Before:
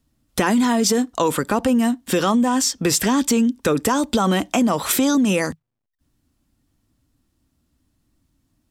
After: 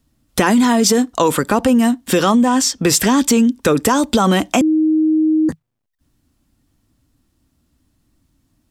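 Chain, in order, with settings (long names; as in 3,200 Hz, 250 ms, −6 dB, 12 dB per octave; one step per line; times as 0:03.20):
0:02.42–0:02.87: high-shelf EQ 10,000 Hz −5.5 dB
0:04.61–0:05.49: beep over 313 Hz −15.5 dBFS
level +4.5 dB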